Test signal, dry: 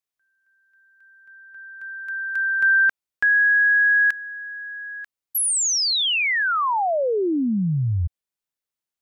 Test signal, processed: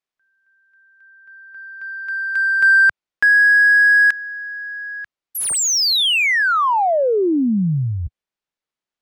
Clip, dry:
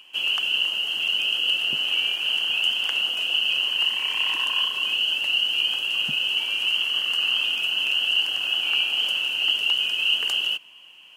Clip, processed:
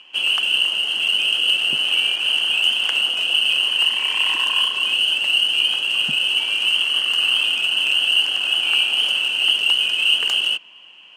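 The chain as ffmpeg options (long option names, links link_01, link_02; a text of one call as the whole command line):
ffmpeg -i in.wav -af "equalizer=frequency=91:width=1.7:gain=-7,adynamicsmooth=sensitivity=4:basefreq=5200,volume=5dB" out.wav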